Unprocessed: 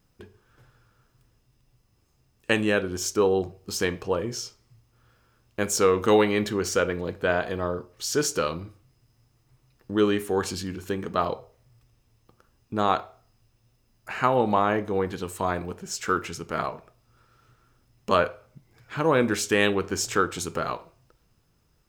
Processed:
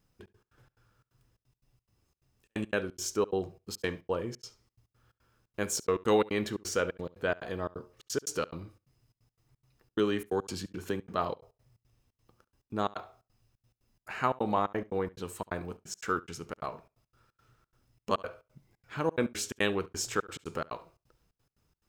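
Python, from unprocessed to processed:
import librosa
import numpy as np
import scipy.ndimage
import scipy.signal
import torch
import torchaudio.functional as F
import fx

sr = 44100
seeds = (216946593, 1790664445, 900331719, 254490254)

y = fx.step_gate(x, sr, bpm=176, pattern='xxx.x.xx.xxx.', floor_db=-60.0, edge_ms=4.5)
y = y + 10.0 ** (-22.0 / 20.0) * np.pad(y, (int(70 * sr / 1000.0), 0))[:len(y)]
y = fx.band_squash(y, sr, depth_pct=40, at=(9.99, 11.01))
y = y * 10.0 ** (-6.0 / 20.0)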